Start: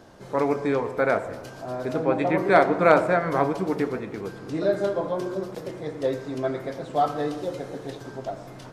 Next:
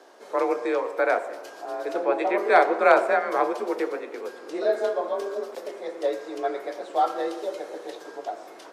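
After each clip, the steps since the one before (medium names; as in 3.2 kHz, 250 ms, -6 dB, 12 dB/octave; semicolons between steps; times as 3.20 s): high-pass 300 Hz 24 dB/octave; frequency shift +39 Hz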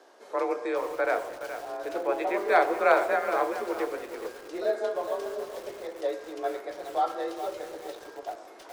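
high-pass 150 Hz 6 dB/octave; bit-crushed delay 421 ms, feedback 35%, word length 6-bit, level -9.5 dB; trim -4 dB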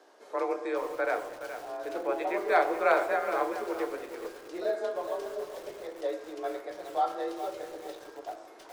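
reverberation RT60 0.40 s, pre-delay 7 ms, DRR 12 dB; trim -3 dB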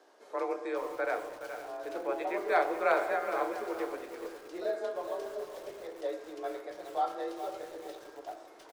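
delay 511 ms -16 dB; trim -3 dB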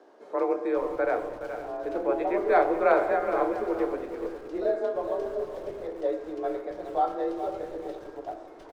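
tilt EQ -3.5 dB/octave; trim +4 dB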